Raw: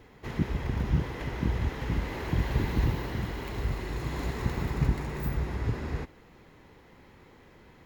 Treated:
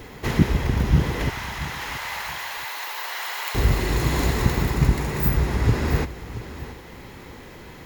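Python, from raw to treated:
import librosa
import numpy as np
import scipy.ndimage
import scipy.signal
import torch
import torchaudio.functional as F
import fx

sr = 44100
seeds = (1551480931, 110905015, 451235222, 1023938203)

y = fx.high_shelf(x, sr, hz=4800.0, db=9.0)
y = fx.rider(y, sr, range_db=10, speed_s=0.5)
y = fx.highpass(y, sr, hz=770.0, slope=24, at=(1.3, 3.55))
y = fx.echo_feedback(y, sr, ms=678, feedback_pct=22, wet_db=-14.5)
y = y * librosa.db_to_amplitude(9.0)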